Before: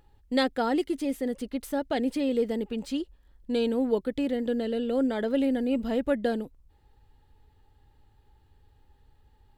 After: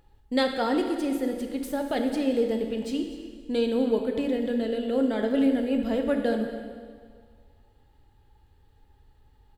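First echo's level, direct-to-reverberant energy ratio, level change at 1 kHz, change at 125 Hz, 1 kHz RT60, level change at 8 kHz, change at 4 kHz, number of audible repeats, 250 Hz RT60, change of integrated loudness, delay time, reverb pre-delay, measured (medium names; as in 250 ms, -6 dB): -16.5 dB, 4.0 dB, +1.0 dB, no reading, 1.8 s, no reading, +1.5 dB, 1, 1.8 s, +1.5 dB, 245 ms, 13 ms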